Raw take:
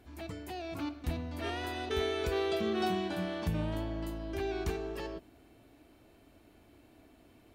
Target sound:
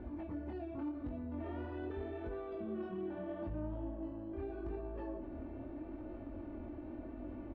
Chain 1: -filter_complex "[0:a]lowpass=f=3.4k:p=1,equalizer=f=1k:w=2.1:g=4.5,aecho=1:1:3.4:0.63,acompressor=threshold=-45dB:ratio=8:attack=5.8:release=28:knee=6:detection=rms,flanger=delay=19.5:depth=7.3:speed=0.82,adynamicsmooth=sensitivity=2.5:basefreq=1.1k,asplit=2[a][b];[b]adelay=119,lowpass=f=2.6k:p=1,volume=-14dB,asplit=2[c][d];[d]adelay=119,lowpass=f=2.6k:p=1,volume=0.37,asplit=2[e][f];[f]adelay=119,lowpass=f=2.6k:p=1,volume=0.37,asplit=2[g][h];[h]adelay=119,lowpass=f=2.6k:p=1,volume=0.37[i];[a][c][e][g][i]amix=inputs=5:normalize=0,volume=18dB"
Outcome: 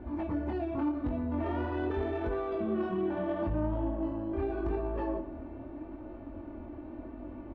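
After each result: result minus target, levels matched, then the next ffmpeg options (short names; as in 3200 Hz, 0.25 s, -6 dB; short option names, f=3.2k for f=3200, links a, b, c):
compressor: peak gain reduction -9.5 dB; 1000 Hz band +3.0 dB
-filter_complex "[0:a]lowpass=f=3.4k:p=1,equalizer=f=1k:w=2.1:g=4.5,aecho=1:1:3.4:0.63,acompressor=threshold=-56dB:ratio=8:attack=5.8:release=28:knee=6:detection=rms,flanger=delay=19.5:depth=7.3:speed=0.82,adynamicsmooth=sensitivity=2.5:basefreq=1.1k,asplit=2[a][b];[b]adelay=119,lowpass=f=2.6k:p=1,volume=-14dB,asplit=2[c][d];[d]adelay=119,lowpass=f=2.6k:p=1,volume=0.37,asplit=2[e][f];[f]adelay=119,lowpass=f=2.6k:p=1,volume=0.37,asplit=2[g][h];[h]adelay=119,lowpass=f=2.6k:p=1,volume=0.37[i];[a][c][e][g][i]amix=inputs=5:normalize=0,volume=18dB"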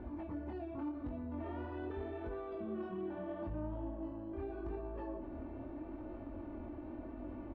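1000 Hz band +2.5 dB
-filter_complex "[0:a]lowpass=f=3.4k:p=1,aecho=1:1:3.4:0.63,acompressor=threshold=-56dB:ratio=8:attack=5.8:release=28:knee=6:detection=rms,flanger=delay=19.5:depth=7.3:speed=0.82,adynamicsmooth=sensitivity=2.5:basefreq=1.1k,asplit=2[a][b];[b]adelay=119,lowpass=f=2.6k:p=1,volume=-14dB,asplit=2[c][d];[d]adelay=119,lowpass=f=2.6k:p=1,volume=0.37,asplit=2[e][f];[f]adelay=119,lowpass=f=2.6k:p=1,volume=0.37,asplit=2[g][h];[h]adelay=119,lowpass=f=2.6k:p=1,volume=0.37[i];[a][c][e][g][i]amix=inputs=5:normalize=0,volume=18dB"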